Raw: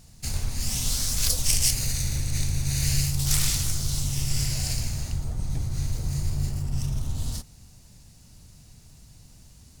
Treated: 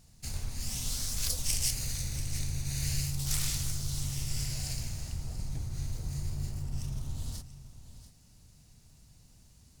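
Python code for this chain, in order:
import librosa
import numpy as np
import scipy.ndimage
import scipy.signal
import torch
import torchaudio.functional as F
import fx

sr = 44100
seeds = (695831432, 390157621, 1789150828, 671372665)

y = x + 10.0 ** (-14.0 / 20.0) * np.pad(x, (int(686 * sr / 1000.0), 0))[:len(x)]
y = F.gain(torch.from_numpy(y), -8.0).numpy()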